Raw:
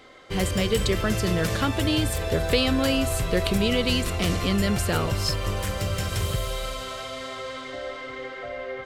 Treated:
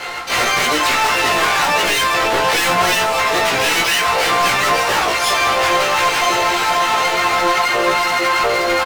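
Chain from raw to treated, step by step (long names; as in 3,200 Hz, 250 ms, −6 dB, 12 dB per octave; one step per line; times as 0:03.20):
reverb reduction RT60 1.7 s
Chebyshev band-pass filter 850–2,600 Hz, order 2
in parallel at −1 dB: brickwall limiter −25.5 dBFS, peak gain reduction 11 dB
on the sum: leveller curve on the samples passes 3
soft clipping −26 dBFS, distortion −9 dB
pitch-shifted copies added −7 semitones 0 dB, +5 semitones −6 dB, +12 semitones −7 dB
hard clipping −24.5 dBFS, distortion −12 dB
double-tracking delay 17 ms −4 dB
on a send at −3.5 dB: convolution reverb, pre-delay 3 ms
on the sum: level +8.5 dB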